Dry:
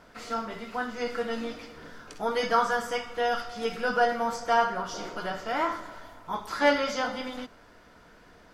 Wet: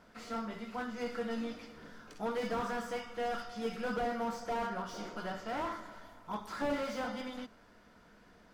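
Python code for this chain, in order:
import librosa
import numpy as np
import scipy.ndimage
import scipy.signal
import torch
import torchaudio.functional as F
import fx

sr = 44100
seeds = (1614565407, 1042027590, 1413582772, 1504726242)

y = fx.peak_eq(x, sr, hz=210.0, db=7.5, octaves=0.34)
y = fx.slew_limit(y, sr, full_power_hz=43.0)
y = y * 10.0 ** (-7.0 / 20.0)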